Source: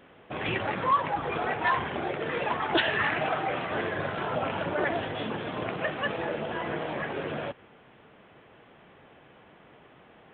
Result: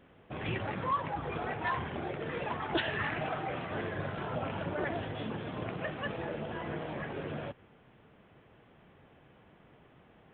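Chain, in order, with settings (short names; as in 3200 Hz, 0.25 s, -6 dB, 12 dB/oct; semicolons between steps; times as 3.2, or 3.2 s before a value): low shelf 200 Hz +11 dB; gain -8 dB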